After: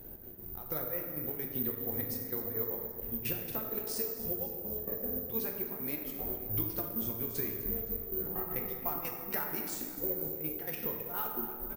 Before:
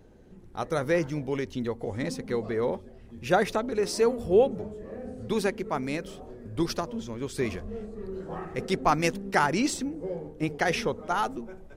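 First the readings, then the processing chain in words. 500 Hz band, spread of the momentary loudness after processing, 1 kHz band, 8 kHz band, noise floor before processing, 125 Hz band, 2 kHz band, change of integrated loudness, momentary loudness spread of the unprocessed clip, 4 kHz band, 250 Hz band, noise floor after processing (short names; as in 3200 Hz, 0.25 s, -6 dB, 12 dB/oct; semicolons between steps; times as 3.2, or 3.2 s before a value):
-13.5 dB, 3 LU, -15.5 dB, -7.5 dB, -49 dBFS, -9.0 dB, -15.0 dB, -5.5 dB, 14 LU, -12.5 dB, -11.0 dB, -45 dBFS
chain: compressor 12:1, threshold -38 dBFS, peak gain reduction 23 dB; step gate "xx.x.xx..xx.x.." 194 bpm -12 dB; feedback echo 0.26 s, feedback 57%, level -16 dB; plate-style reverb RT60 1.8 s, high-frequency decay 0.5×, DRR 0.5 dB; careless resampling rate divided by 3×, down none, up zero stuff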